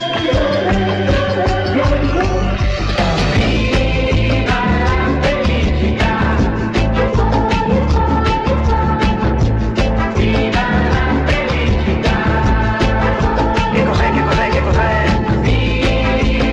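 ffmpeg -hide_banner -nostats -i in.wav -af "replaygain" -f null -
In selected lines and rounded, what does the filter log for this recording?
track_gain = -1.2 dB
track_peak = 0.316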